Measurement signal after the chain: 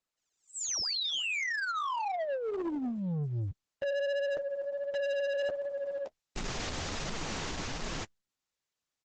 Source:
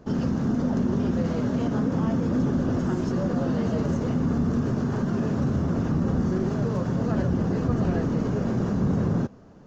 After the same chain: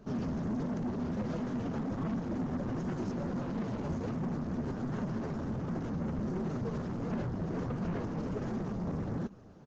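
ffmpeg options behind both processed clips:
-af "flanger=delay=4.2:depth=9.4:regen=23:speed=1.4:shape=triangular,aresample=16000,asoftclip=type=tanh:threshold=-30dB,aresample=44100" -ar 48000 -c:a libopus -b:a 12k

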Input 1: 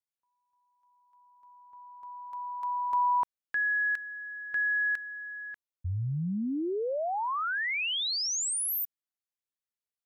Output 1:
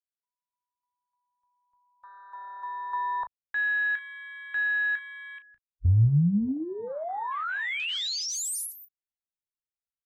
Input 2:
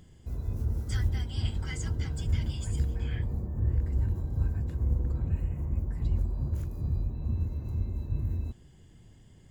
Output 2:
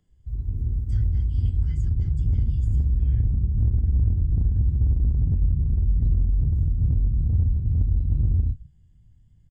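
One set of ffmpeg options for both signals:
-filter_complex "[0:a]afwtdn=0.02,asubboost=boost=9.5:cutoff=130,acrossover=split=260|1300[a][b][c];[a]acompressor=threshold=-17dB:ratio=6:attack=1.1:release=46:knee=6:detection=rms[d];[d][b][c]amix=inputs=3:normalize=0,aecho=1:1:19|35:0.224|0.237"

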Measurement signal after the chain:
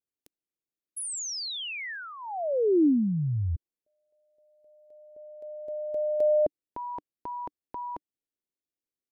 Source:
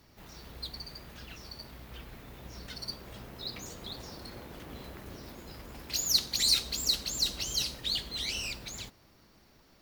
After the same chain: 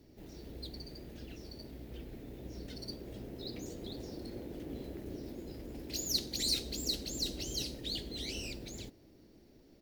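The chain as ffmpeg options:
-af "firequalizer=gain_entry='entry(180,0);entry(300,8);entry(1100,-16);entry(1800,-9);entry(4500,-7)':delay=0.05:min_phase=1"

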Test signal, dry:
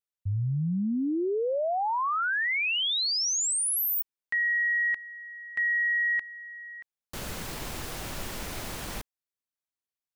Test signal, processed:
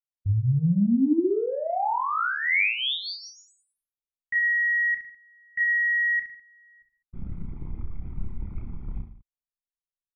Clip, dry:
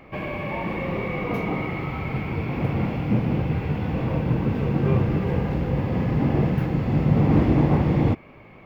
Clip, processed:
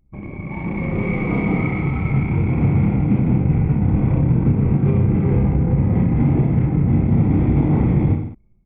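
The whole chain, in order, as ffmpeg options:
-filter_complex "[0:a]dynaudnorm=f=530:g=3:m=4.5dB,lowpass=2.4k,aecho=1:1:0.9:0.51,anlmdn=398,equalizer=f=1.1k:t=o:w=0.67:g=-10,asplit=2[a][b];[b]aecho=0:1:30|64.5|104.2|149.8|202.3:0.631|0.398|0.251|0.158|0.1[c];[a][c]amix=inputs=2:normalize=0,alimiter=limit=-7.5dB:level=0:latency=1:release=164"

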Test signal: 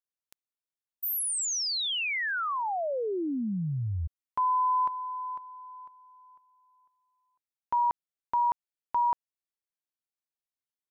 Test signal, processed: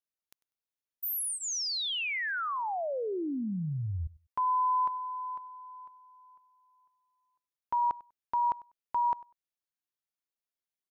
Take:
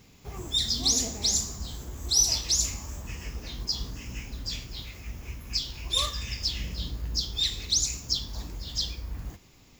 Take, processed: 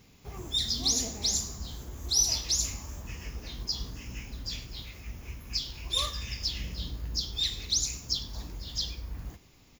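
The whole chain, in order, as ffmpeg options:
-filter_complex "[0:a]bandreject=f=7.9k:w=5.8,asplit=2[a][b];[b]aecho=0:1:98|196:0.0944|0.016[c];[a][c]amix=inputs=2:normalize=0,volume=-2.5dB"

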